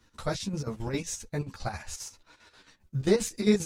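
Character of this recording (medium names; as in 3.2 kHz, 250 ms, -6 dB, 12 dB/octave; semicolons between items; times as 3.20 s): chopped level 7.5 Hz, depth 65%, duty 60%; a shimmering, thickened sound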